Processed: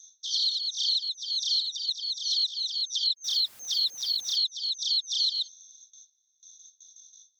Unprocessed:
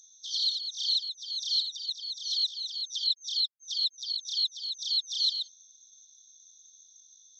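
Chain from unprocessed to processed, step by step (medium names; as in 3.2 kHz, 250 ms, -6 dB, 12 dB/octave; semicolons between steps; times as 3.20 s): 3.24–4.36 s: jump at every zero crossing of -44.5 dBFS; gate with hold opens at -46 dBFS; compression, threshold -28 dBFS, peak gain reduction 6 dB; trim +5 dB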